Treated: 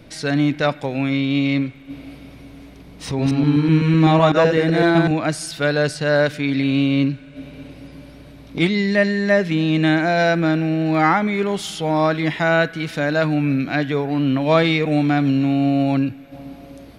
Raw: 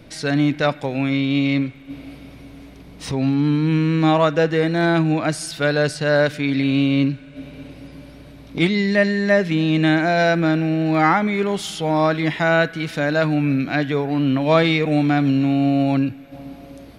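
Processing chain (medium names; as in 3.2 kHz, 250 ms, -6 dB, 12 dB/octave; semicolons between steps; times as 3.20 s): 3.06–5.11 s: chunks repeated in reverse 126 ms, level -2.5 dB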